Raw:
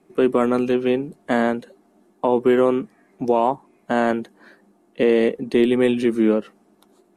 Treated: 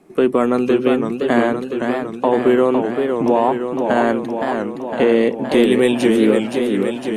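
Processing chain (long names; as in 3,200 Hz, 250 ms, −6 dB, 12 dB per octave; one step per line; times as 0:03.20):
0:05.53–0:06.31: high-shelf EQ 4,100 Hz +10.5 dB
in parallel at +2 dB: downward compressor, threshold −27 dBFS, peak gain reduction 14.5 dB
on the sum: feedback echo with a swinging delay time 513 ms, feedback 69%, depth 177 cents, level −5.5 dB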